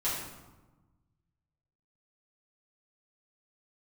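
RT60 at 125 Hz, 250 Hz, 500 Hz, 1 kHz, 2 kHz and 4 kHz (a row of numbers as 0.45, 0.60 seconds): 2.1, 1.6, 1.2, 1.2, 0.85, 0.70 seconds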